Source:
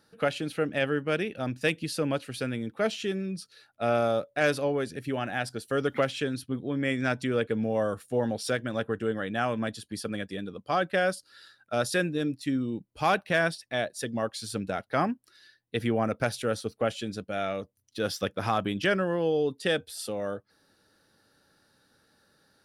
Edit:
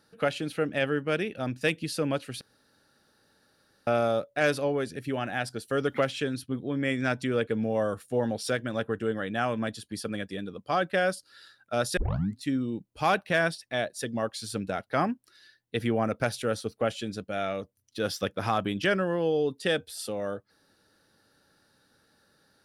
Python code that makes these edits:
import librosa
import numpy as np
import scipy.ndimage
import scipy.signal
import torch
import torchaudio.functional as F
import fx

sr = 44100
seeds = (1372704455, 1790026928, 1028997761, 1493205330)

y = fx.edit(x, sr, fx.room_tone_fill(start_s=2.41, length_s=1.46),
    fx.tape_start(start_s=11.97, length_s=0.44), tone=tone)